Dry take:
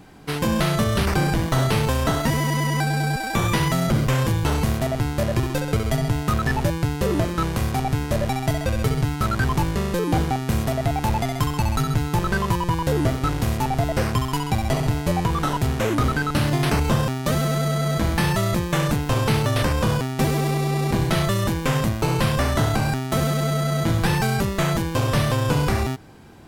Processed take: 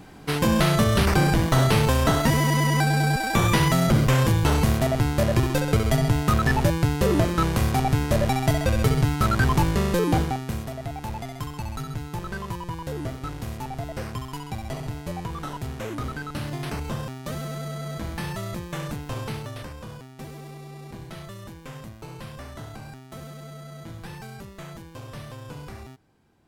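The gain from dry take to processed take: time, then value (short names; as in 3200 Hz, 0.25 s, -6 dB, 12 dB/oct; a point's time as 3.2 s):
10.05 s +1 dB
10.69 s -10.5 dB
19.2 s -10.5 dB
19.79 s -18.5 dB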